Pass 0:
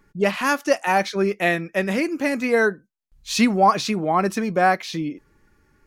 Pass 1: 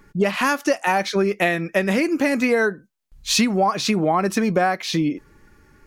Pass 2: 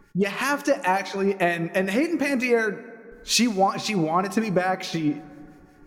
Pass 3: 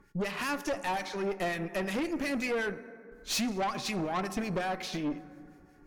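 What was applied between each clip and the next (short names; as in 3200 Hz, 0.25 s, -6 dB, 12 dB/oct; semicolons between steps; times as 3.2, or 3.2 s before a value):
compressor 10:1, threshold -23 dBFS, peak gain reduction 12.5 dB; gain +7.5 dB
harmonic tremolo 5.5 Hz, depth 70%, crossover 1600 Hz; plate-style reverb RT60 2.4 s, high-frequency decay 0.4×, DRR 14.5 dB
tube stage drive 23 dB, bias 0.5; gain -4 dB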